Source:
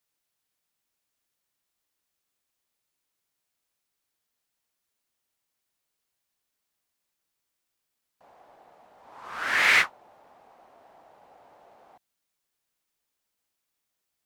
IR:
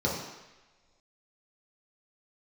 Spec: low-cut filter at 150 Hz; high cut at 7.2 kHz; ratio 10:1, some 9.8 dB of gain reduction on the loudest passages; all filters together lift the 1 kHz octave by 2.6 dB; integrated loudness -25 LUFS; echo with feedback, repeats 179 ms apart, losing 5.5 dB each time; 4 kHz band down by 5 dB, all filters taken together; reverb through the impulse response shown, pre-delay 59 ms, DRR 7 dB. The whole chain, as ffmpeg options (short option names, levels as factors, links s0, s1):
-filter_complex "[0:a]highpass=150,lowpass=7200,equalizer=f=1000:t=o:g=4,equalizer=f=4000:t=o:g=-7,acompressor=threshold=0.0501:ratio=10,aecho=1:1:179|358|537|716|895|1074|1253:0.531|0.281|0.149|0.079|0.0419|0.0222|0.0118,asplit=2[s0][s1];[1:a]atrim=start_sample=2205,adelay=59[s2];[s1][s2]afir=irnorm=-1:irlink=0,volume=0.133[s3];[s0][s3]amix=inputs=2:normalize=0,volume=2"